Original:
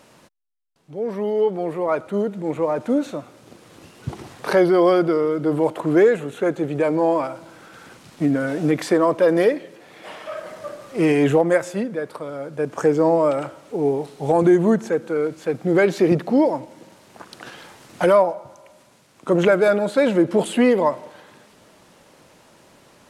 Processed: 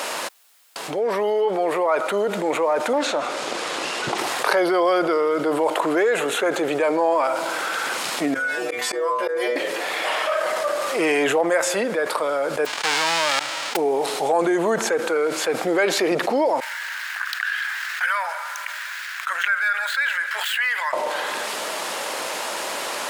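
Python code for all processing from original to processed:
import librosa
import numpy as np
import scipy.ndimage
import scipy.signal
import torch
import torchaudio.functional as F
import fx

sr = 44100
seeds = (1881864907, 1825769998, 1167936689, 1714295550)

y = fx.chain(x, sr, fx.lowpass(hz=7900.0, slope=12),
    fx.doppler_dist(depth_ms=0.54), at=(2.93, 4.18))
y = fx.chain(y, sr, fx.hum_notches(base_hz=50, count=9),
    fx.stiff_resonator(f0_hz=120.0, decay_s=0.48, stiffness=0.002),
    fx.auto_swell(attack_ms=139.0), at=(8.34, 9.56))
y = fx.envelope_flatten(y, sr, power=0.1, at=(12.65, 13.75), fade=0.02)
y = fx.level_steps(y, sr, step_db=24, at=(12.65, 13.75), fade=0.02)
y = fx.air_absorb(y, sr, metres=120.0, at=(12.65, 13.75), fade=0.02)
y = fx.chain(y, sr, fx.median_filter(points=5),
    fx.ladder_highpass(hz=1500.0, resonance_pct=70),
    fx.high_shelf(hz=9500.0, db=5.5), at=(16.6, 20.93))
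y = scipy.signal.sosfilt(scipy.signal.butter(2, 620.0, 'highpass', fs=sr, output='sos'), y)
y = fx.notch(y, sr, hz=5900.0, q=24.0)
y = fx.env_flatten(y, sr, amount_pct=70)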